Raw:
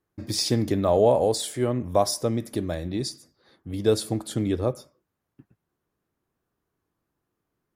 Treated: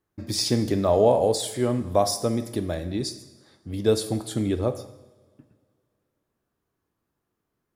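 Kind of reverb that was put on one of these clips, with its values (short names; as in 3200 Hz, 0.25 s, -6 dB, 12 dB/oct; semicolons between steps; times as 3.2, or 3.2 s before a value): two-slope reverb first 0.93 s, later 2.6 s, from -19 dB, DRR 10 dB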